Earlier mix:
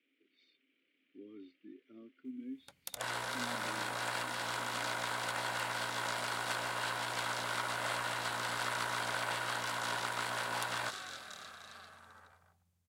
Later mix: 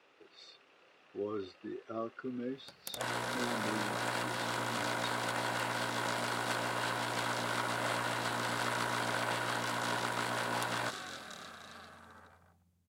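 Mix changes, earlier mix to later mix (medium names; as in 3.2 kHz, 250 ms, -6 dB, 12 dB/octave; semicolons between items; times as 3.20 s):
speech: remove vowel filter i; background: add peaking EQ 240 Hz +9 dB 2.4 oct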